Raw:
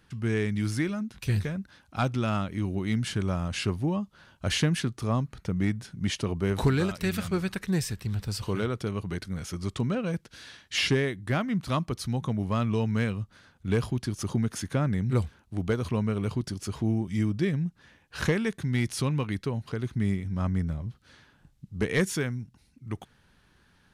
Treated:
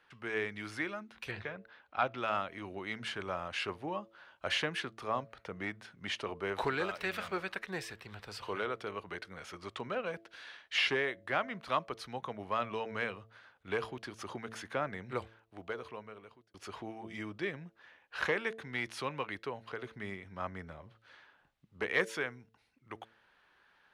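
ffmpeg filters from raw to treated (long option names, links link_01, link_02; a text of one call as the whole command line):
ffmpeg -i in.wav -filter_complex "[0:a]asettb=1/sr,asplit=3[link_01][link_02][link_03];[link_01]atrim=end=1.314[link_04];[link_02]atrim=start=1.31:end=2.17,asetpts=PTS-STARTPTS,afade=type=in:duration=0.004:curve=qsin,afade=type=out:start_time=0.856:duration=0.004:curve=qsin,lowpass=3900[link_05];[link_03]atrim=start=2.166[link_06];[link_04][link_05]acrossfade=duration=0.004:curve1=hsin:curve2=qsin[link_07];[link_07][link_06]acrossfade=duration=0.004:curve1=qsin:curve2=hsin,asettb=1/sr,asplit=3[link_08][link_09][link_10];[link_08]atrim=end=6.864[link_11];[link_09]atrim=start=6.86:end=7.4,asetpts=PTS-STARTPTS,afade=type=in:duration=0.004:curve=qsin,afade=type=out:start_time=0.536:duration=0.004:curve=qsin,aeval=exprs='val(0)+0.5*0.00562*sgn(val(0))':channel_layout=same[link_12];[link_10]atrim=start=7.396[link_13];[link_11][link_12]acrossfade=duration=0.004:curve1=hsin:curve2=qsin[link_14];[link_14][link_13]acrossfade=duration=0.004:curve1=qsin:curve2=hsin,asplit=2[link_15][link_16];[link_15]atrim=end=16.54,asetpts=PTS-STARTPTS,afade=type=out:start_time=15.08:duration=1.46[link_17];[link_16]atrim=start=16.54,asetpts=PTS-STARTPTS,afade=type=in:duration=0.004:curve=hsin[link_18];[link_17][link_18]concat=n=2:v=0:a=1,acrossover=split=440 3500:gain=0.0794 1 0.158[link_19][link_20][link_21];[link_19][link_20][link_21]amix=inputs=3:normalize=0,bandreject=frequency=111.8:width_type=h:width=4,bandreject=frequency=223.6:width_type=h:width=4,bandreject=frequency=335.4:width_type=h:width=4,bandreject=frequency=447.2:width_type=h:width=4,bandreject=frequency=559:width_type=h:width=4,bandreject=frequency=670.8:width_type=h:width=4" out.wav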